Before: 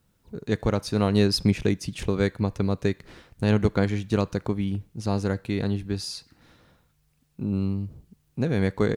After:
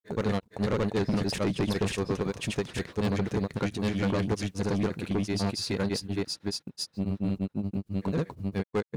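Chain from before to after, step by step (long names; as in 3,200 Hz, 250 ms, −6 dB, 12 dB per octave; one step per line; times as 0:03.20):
high-pass filter 150 Hz 6 dB per octave
noise gate −55 dBFS, range −18 dB
granular cloud 100 ms, grains 26 per second, spray 768 ms
soft clipping −28.5 dBFS, distortion −8 dB
level +6.5 dB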